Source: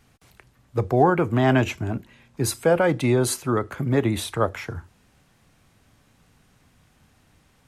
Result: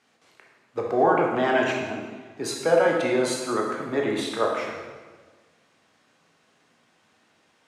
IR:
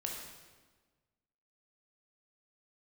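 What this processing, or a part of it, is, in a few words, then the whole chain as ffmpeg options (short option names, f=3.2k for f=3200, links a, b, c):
supermarket ceiling speaker: -filter_complex "[0:a]highpass=330,lowpass=6.8k[a];[1:a]atrim=start_sample=2205[b];[a][b]afir=irnorm=-1:irlink=0"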